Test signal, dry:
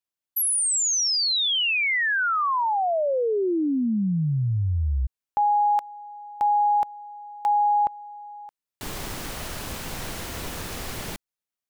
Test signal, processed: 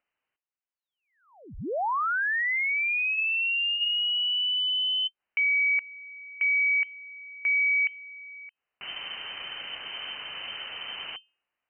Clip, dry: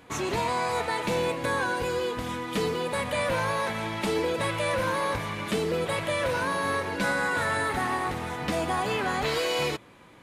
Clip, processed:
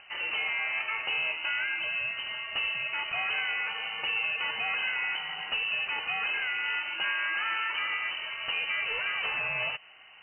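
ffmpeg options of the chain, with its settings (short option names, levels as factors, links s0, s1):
-af "acompressor=mode=upward:threshold=0.00794:ratio=1.5:release=70:knee=2.83:detection=peak,bandreject=f=263.8:t=h:w=4,bandreject=f=527.6:t=h:w=4,lowpass=f=2600:t=q:w=0.5098,lowpass=f=2600:t=q:w=0.6013,lowpass=f=2600:t=q:w=0.9,lowpass=f=2600:t=q:w=2.563,afreqshift=-3100,volume=0.668"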